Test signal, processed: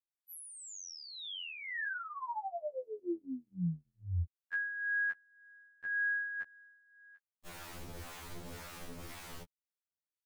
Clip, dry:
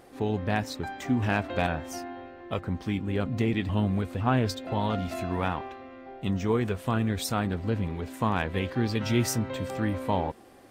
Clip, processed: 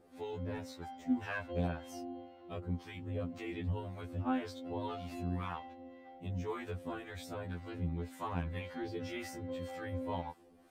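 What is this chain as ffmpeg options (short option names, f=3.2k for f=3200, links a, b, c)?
-filter_complex "[0:a]acrossover=split=680[a][b];[a]aeval=exprs='val(0)*(1-0.7/2+0.7/2*cos(2*PI*1.9*n/s))':c=same[c];[b]aeval=exprs='val(0)*(1-0.7/2-0.7/2*cos(2*PI*1.9*n/s))':c=same[d];[c][d]amix=inputs=2:normalize=0,acrossover=split=2500[e][f];[f]acompressor=threshold=-41dB:ratio=4:attack=1:release=60[g];[e][g]amix=inputs=2:normalize=0,afftfilt=real='re*2*eq(mod(b,4),0)':imag='im*2*eq(mod(b,4),0)':win_size=2048:overlap=0.75,volume=-5.5dB"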